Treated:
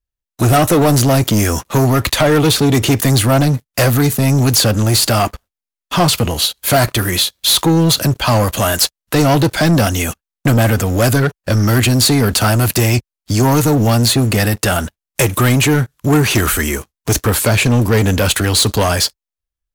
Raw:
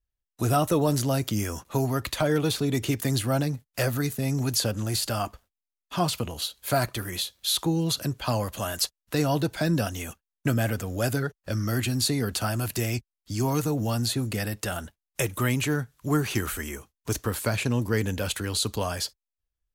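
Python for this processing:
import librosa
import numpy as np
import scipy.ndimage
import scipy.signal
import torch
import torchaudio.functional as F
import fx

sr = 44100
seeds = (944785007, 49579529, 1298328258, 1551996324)

y = fx.leveller(x, sr, passes=3)
y = F.gain(torch.from_numpy(y), 6.0).numpy()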